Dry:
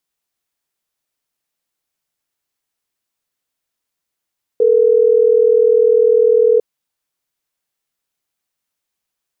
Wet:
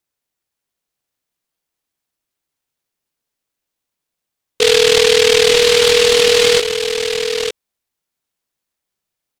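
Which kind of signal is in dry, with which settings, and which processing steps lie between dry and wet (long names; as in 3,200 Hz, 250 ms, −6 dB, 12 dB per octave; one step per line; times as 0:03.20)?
call progress tone ringback tone, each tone −11 dBFS
on a send: single-tap delay 908 ms −8 dB
on the sum: short delay modulated by noise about 3,100 Hz, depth 0.22 ms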